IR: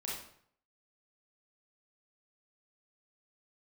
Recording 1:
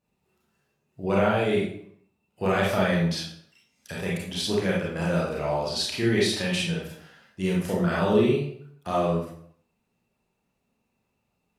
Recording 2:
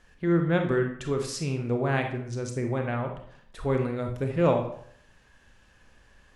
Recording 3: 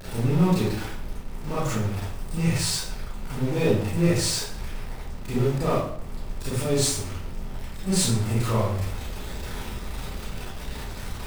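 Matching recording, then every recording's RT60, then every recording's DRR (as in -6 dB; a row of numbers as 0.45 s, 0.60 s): 1; 0.60 s, 0.60 s, 0.60 s; -5.5 dB, 3.5 dB, -10.5 dB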